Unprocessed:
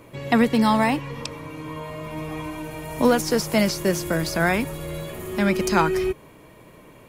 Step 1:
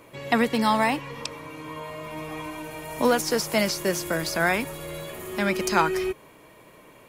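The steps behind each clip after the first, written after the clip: bass shelf 290 Hz -9.5 dB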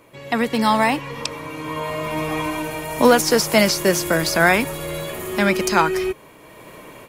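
level rider gain up to 12 dB; trim -1 dB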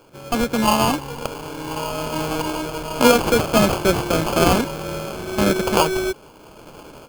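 sample-rate reducer 1.9 kHz, jitter 0%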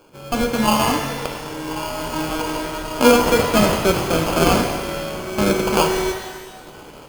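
pitch-shifted reverb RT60 1.3 s, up +12 st, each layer -8 dB, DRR 4 dB; trim -1 dB

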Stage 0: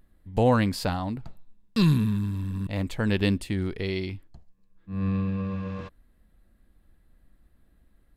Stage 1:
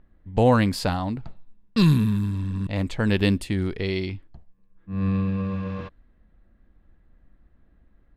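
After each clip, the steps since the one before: level-controlled noise filter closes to 2.2 kHz, open at -22.5 dBFS; trim +3 dB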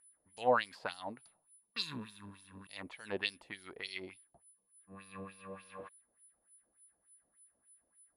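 whistle 10 kHz -42 dBFS; harmonic-percussive split harmonic -3 dB; LFO band-pass sine 3.4 Hz 590–5900 Hz; trim -2 dB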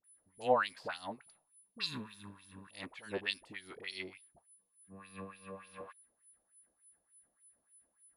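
phase dispersion highs, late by 42 ms, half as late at 690 Hz

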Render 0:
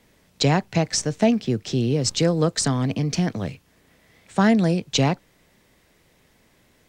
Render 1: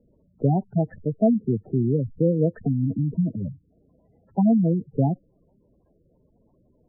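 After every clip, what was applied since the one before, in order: low-pass 1.4 kHz 24 dB/octave; spectral gate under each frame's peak -10 dB strong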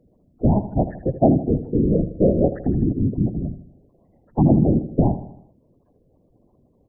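whisper effect; on a send: feedback delay 79 ms, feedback 50%, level -13 dB; on the sum: trim +3 dB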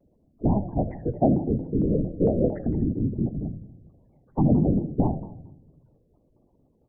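on a send at -14.5 dB: reverberation RT60 1.0 s, pre-delay 4 ms; on the sum: vibrato with a chosen wave saw down 4.4 Hz, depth 250 cents; trim -5 dB

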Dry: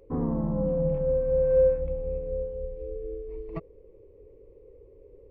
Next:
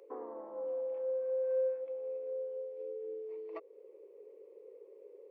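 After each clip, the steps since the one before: compression 2:1, threshold -39 dBFS, peak gain reduction 12 dB; steep high-pass 370 Hz 36 dB/octave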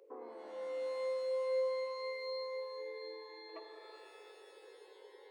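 pitch-shifted reverb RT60 2.5 s, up +12 st, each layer -2 dB, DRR 5.5 dB; trim -5 dB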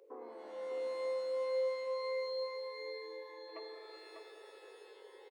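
delay 596 ms -6 dB

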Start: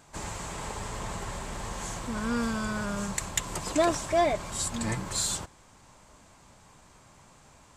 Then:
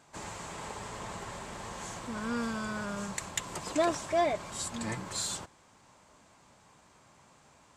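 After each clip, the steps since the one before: high-pass 150 Hz 6 dB/octave; treble shelf 8.9 kHz -7 dB; trim -3 dB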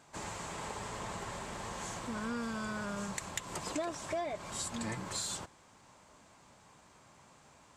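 compression 5:1, threshold -34 dBFS, peak gain reduction 10.5 dB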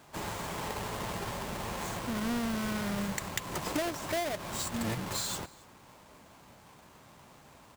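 square wave that keeps the level; delay 272 ms -23.5 dB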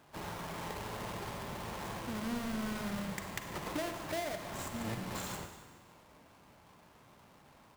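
median filter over 9 samples; reverberation RT60 1.4 s, pre-delay 37 ms, DRR 6 dB; trim -5.5 dB

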